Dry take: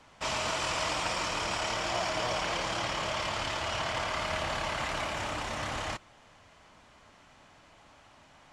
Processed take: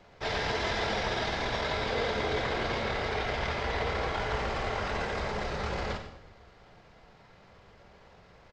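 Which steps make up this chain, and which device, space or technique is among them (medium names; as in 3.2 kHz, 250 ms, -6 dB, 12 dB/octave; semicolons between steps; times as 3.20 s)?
monster voice (pitch shift -6.5 st; bass shelf 120 Hz +7 dB; delay 97 ms -12 dB; reverberation RT60 0.95 s, pre-delay 3 ms, DRR 7 dB)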